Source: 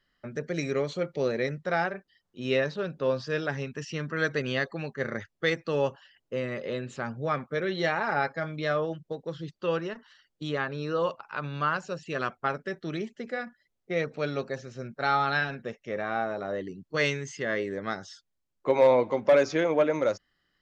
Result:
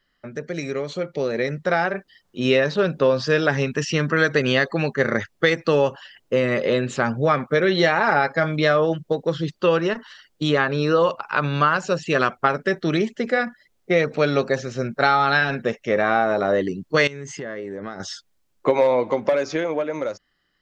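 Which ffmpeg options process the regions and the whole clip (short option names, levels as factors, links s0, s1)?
-filter_complex "[0:a]asettb=1/sr,asplit=3[s0][s1][s2];[s0]atrim=end=17.074[s3];[s1]atrim=start=17.07:end=18,asetpts=PTS-STARTPTS,afade=t=in:d=0.004:c=qsin,afade=t=out:st=0.926:d=0.004:c=qsin,equalizer=f=4100:t=o:w=2.3:g=-8.5,acompressor=threshold=0.01:ratio=16:attack=3.2:release=140:knee=1:detection=peak[s4];[s2]atrim=start=17.996[s5];[s3][s4]acrossfade=d=0.004:c1=hsin:c2=qsin[s6];[s6][s5]acrossfade=d=0.004:c1=qsin:c2=hsin,acompressor=threshold=0.0447:ratio=6,equalizer=f=96:t=o:w=1.5:g=-3,dynaudnorm=f=150:g=21:m=2.99,volume=1.58"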